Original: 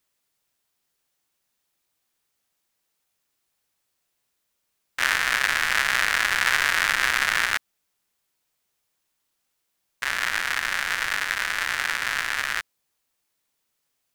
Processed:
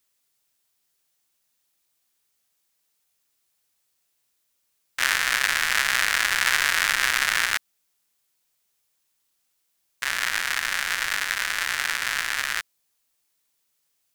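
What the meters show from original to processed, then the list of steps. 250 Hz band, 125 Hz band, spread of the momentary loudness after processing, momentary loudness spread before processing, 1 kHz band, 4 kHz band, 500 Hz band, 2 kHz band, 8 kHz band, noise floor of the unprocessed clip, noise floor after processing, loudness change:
-2.5 dB, n/a, 6 LU, 6 LU, -1.5 dB, +1.5 dB, -2.5 dB, -0.5 dB, +3.5 dB, -77 dBFS, -73 dBFS, 0.0 dB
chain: high shelf 3000 Hz +7 dB; gain -2.5 dB

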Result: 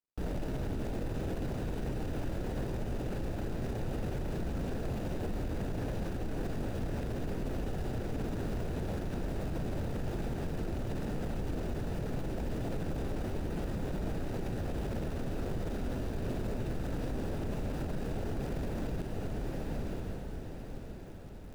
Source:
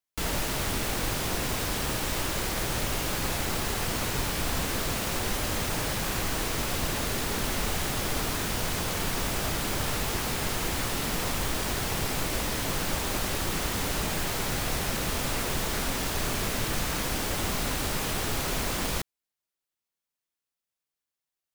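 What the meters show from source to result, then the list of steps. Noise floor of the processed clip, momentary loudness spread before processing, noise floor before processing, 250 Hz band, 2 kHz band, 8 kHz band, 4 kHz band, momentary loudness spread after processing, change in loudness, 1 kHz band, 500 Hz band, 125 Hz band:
-42 dBFS, 0 LU, under -85 dBFS, -2.0 dB, -16.0 dB, -24.5 dB, -21.0 dB, 2 LU, -8.5 dB, -12.5 dB, -4.0 dB, -2.0 dB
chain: median filter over 41 samples; reverse; upward compressor, threshold -39 dBFS; reverse; diffused feedback echo 1.01 s, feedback 41%, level -5 dB; limiter -30 dBFS, peak gain reduction 11.5 dB; gain +2.5 dB

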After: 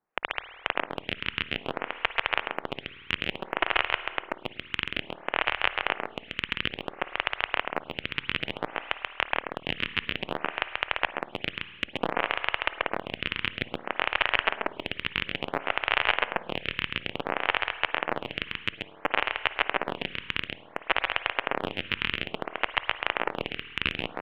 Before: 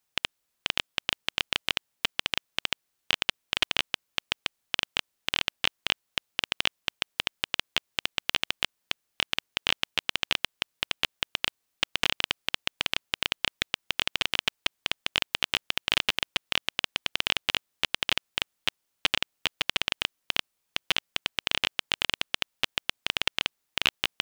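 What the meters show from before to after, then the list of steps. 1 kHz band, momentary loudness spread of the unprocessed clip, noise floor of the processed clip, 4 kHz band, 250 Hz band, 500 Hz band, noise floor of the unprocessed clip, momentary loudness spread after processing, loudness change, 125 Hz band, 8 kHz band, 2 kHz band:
+7.5 dB, 5 LU, -49 dBFS, -6.0 dB, +6.0 dB, +8.5 dB, -79 dBFS, 8 LU, -0.5 dB, +4.5 dB, under -20 dB, +2.5 dB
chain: reverb removal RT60 0.55 s; LPF 2400 Hz 24 dB/oct; dynamic EQ 640 Hz, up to +4 dB, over -52 dBFS, Q 0.71; short-mantissa float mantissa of 6-bit; echo 0.134 s -4 dB; spring tank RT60 2.2 s, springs 52 ms, chirp 55 ms, DRR 12 dB; photocell phaser 0.58 Hz; gain +6.5 dB

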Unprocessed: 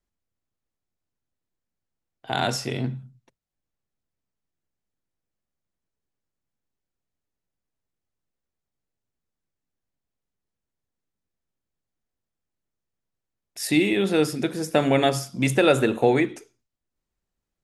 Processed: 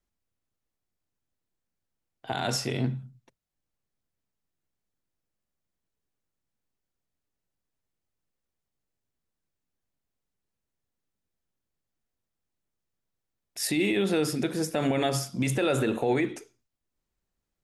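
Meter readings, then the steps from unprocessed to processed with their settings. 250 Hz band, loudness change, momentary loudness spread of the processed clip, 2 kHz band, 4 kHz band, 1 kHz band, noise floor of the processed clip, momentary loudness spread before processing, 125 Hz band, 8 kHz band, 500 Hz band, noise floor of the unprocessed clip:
-4.5 dB, -5.0 dB, 10 LU, -6.0 dB, -4.0 dB, -6.5 dB, -85 dBFS, 11 LU, -3.0 dB, -0.5 dB, -6.0 dB, -85 dBFS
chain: limiter -17 dBFS, peak gain reduction 10 dB

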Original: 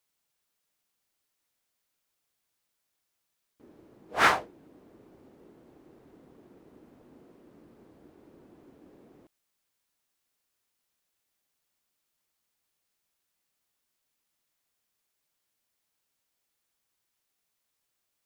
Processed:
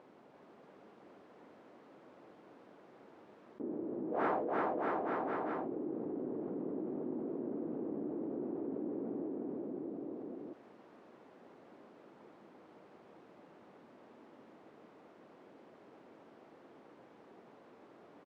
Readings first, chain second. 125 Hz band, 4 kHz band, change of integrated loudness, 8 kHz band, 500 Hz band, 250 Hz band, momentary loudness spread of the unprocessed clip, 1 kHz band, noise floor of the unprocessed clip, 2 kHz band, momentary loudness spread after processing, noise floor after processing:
+2.0 dB, under -20 dB, -13.5 dB, under -25 dB, +5.5 dB, +11.5 dB, 12 LU, -5.0 dB, -81 dBFS, -14.0 dB, 24 LU, -60 dBFS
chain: vibrato 3.5 Hz 8.1 cents; ladder band-pass 360 Hz, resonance 20%; on a send: bouncing-ball echo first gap 0.34 s, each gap 0.85×, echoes 5; on the sum: fast leveller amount 70%; gain +7 dB

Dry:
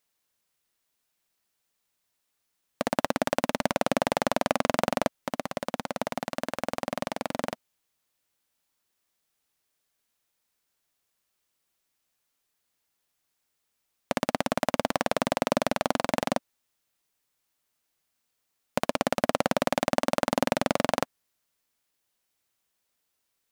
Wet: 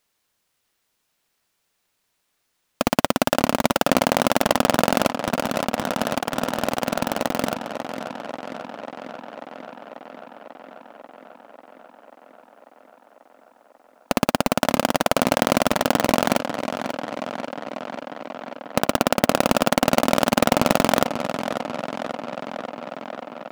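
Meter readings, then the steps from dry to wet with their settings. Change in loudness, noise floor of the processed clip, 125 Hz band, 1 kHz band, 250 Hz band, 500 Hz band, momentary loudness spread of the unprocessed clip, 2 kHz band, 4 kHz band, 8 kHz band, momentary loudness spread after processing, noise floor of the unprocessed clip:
+6.5 dB, -73 dBFS, +8.5 dB, +7.5 dB, +8.5 dB, +7.0 dB, 7 LU, +7.5 dB, +9.0 dB, +9.5 dB, 16 LU, -79 dBFS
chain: half-waves squared off; on a send: tape echo 0.541 s, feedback 82%, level -8 dB, low-pass 5300 Hz; on the sum: gain +2.5 dB

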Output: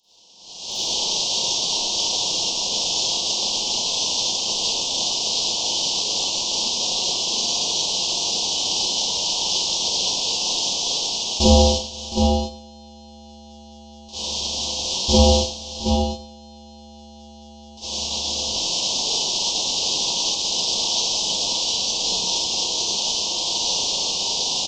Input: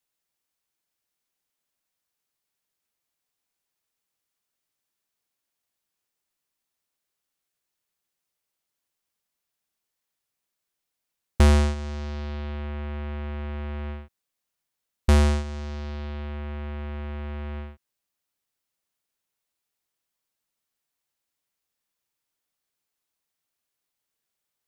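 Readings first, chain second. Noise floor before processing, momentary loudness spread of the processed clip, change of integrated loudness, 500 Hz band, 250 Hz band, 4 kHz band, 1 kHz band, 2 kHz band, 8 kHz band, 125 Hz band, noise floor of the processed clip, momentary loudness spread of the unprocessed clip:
-84 dBFS, 4 LU, +7.5 dB, +11.5 dB, +7.5 dB, +28.5 dB, +12.0 dB, +6.0 dB, +27.5 dB, +0.5 dB, -43 dBFS, 15 LU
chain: delta modulation 32 kbps, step -24 dBFS; echo 0.717 s -4 dB; AGC gain up to 9 dB; elliptic band-stop 930–3000 Hz, stop band 60 dB; low shelf 180 Hz -8 dB; Schroeder reverb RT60 0.76 s, combs from 33 ms, DRR -8.5 dB; expander -8 dBFS; high shelf 4400 Hz +10.5 dB; gain -7 dB

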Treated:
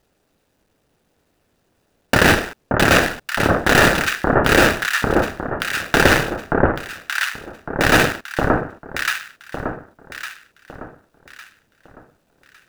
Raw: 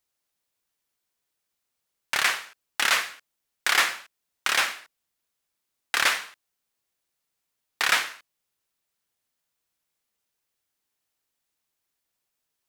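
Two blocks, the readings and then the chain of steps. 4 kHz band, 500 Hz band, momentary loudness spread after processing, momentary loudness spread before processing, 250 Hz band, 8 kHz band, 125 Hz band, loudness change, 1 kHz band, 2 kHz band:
+5.0 dB, +24.5 dB, 16 LU, 14 LU, +32.0 dB, +5.0 dB, n/a, +6.5 dB, +12.0 dB, +9.5 dB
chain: median filter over 41 samples; echo with dull and thin repeats by turns 0.578 s, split 1300 Hz, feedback 57%, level -7 dB; maximiser +29.5 dB; gain -1 dB

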